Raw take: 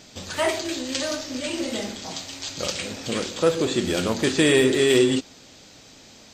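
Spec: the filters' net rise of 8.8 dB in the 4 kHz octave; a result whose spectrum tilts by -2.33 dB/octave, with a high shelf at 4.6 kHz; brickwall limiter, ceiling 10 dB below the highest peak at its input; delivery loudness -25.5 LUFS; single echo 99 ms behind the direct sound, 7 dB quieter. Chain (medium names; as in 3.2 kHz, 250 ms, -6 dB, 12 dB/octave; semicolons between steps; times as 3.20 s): peaking EQ 4 kHz +8.5 dB; treble shelf 4.6 kHz +5 dB; peak limiter -12 dBFS; delay 99 ms -7 dB; trim -4 dB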